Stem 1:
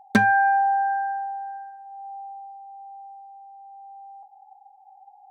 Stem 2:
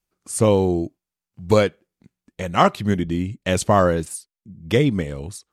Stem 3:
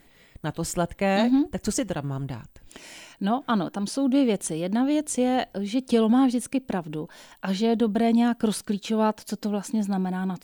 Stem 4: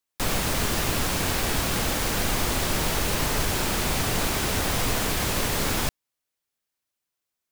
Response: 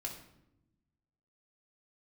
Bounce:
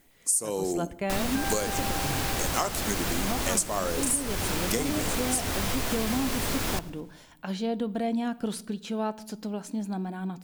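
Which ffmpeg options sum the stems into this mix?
-filter_complex "[0:a]adelay=1200,volume=-13.5dB[link_01];[1:a]highpass=270,aexciter=amount=10:drive=5:freq=4900,volume=-6.5dB,asplit=2[link_02][link_03];[link_03]volume=-10dB[link_04];[2:a]volume=-7.5dB,asplit=2[link_05][link_06];[link_06]volume=-10.5dB[link_07];[3:a]adelay=900,volume=-4dB,asplit=3[link_08][link_09][link_10];[link_09]volume=-11.5dB[link_11];[link_10]volume=-23.5dB[link_12];[4:a]atrim=start_sample=2205[link_13];[link_04][link_07][link_11]amix=inputs=3:normalize=0[link_14];[link_14][link_13]afir=irnorm=-1:irlink=0[link_15];[link_12]aecho=0:1:107|214|321|428|535|642|749|856:1|0.53|0.281|0.149|0.0789|0.0418|0.0222|0.0117[link_16];[link_01][link_02][link_05][link_08][link_15][link_16]amix=inputs=6:normalize=0,acompressor=threshold=-23dB:ratio=10"

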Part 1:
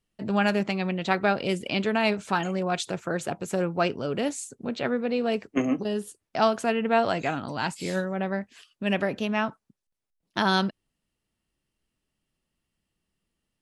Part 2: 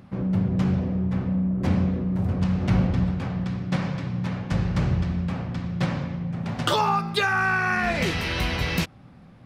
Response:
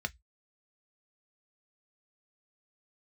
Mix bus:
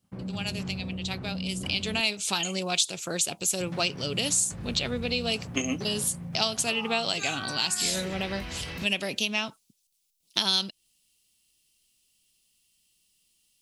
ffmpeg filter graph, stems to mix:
-filter_complex "[0:a]aexciter=amount=8.7:drive=6.1:freq=2500,volume=-3.5dB,afade=type=in:start_time=1.55:duration=0.65:silence=0.237137[link_01];[1:a]agate=range=-33dB:threshold=-37dB:ratio=3:detection=peak,alimiter=limit=-20.5dB:level=0:latency=1:release=46,volume=-8.5dB,asplit=3[link_02][link_03][link_04];[link_02]atrim=end=2.01,asetpts=PTS-STARTPTS,afade=type=out:start_time=2.006:duration=0.004:curve=hsin[link_05];[link_03]atrim=start=2.01:end=3.6,asetpts=PTS-STARTPTS,volume=0[link_06];[link_04]atrim=start=3.6,asetpts=PTS-STARTPTS,afade=type=in:duration=0.004:curve=hsin[link_07];[link_05][link_06][link_07]concat=n=3:v=0:a=1[link_08];[link_01][link_08]amix=inputs=2:normalize=0,acompressor=threshold=-25dB:ratio=2.5"

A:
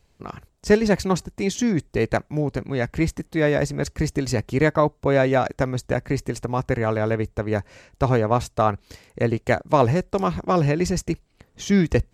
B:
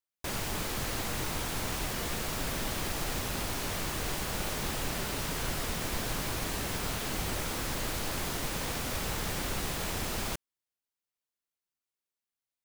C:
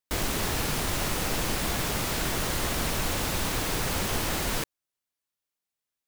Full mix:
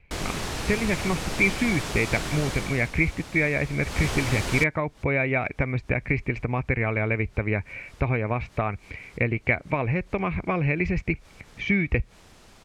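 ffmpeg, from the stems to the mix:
ffmpeg -i stem1.wav -i stem2.wav -i stem3.wav -filter_complex "[0:a]acompressor=threshold=-22dB:ratio=6,lowpass=frequency=2300:width_type=q:width=14,lowshelf=frequency=190:gain=8.5,volume=-3dB,asplit=2[link_01][link_02];[1:a]adelay=2300,volume=-17.5dB[link_03];[2:a]volume=10dB,afade=type=out:start_time=2.48:duration=0.43:silence=0.298538,afade=type=in:start_time=3.8:duration=0.25:silence=0.251189[link_04];[link_02]apad=whole_len=659120[link_05];[link_03][link_05]sidechaincompress=threshold=-41dB:ratio=6:attack=5.8:release=107[link_06];[link_01][link_06][link_04]amix=inputs=3:normalize=0,lowpass=8600" out.wav

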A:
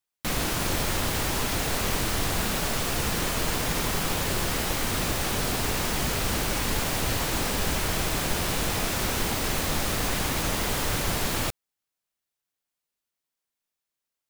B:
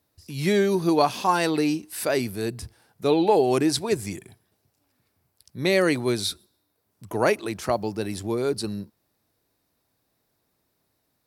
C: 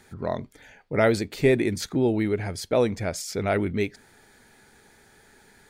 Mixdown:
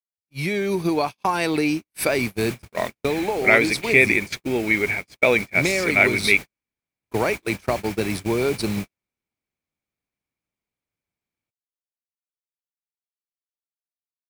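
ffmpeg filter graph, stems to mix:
ffmpeg -i stem1.wav -i stem2.wav -i stem3.wav -filter_complex "[0:a]highpass=frequency=110:poles=1,acrossover=split=350[link_01][link_02];[link_02]acompressor=threshold=-32dB:ratio=4[link_03];[link_01][link_03]amix=inputs=2:normalize=0,aeval=exprs='sgn(val(0))*max(abs(val(0))-0.00501,0)':channel_layout=same,volume=-10dB,afade=type=in:start_time=1.71:duration=0.77:silence=0.266073[link_04];[1:a]bandreject=frequency=7100:width=7.9,acompressor=threshold=-25dB:ratio=16,volume=-0.5dB[link_05];[2:a]highpass=frequency=230:poles=1,equalizer=frequency=2300:width=1.1:gain=10.5,adelay=2500,volume=-4.5dB[link_06];[link_04][link_05][link_06]amix=inputs=3:normalize=0,agate=range=-56dB:threshold=-32dB:ratio=16:detection=peak,equalizer=frequency=2300:width_type=o:width=0.22:gain=12,dynaudnorm=framelen=240:gausssize=5:maxgain=8dB" out.wav

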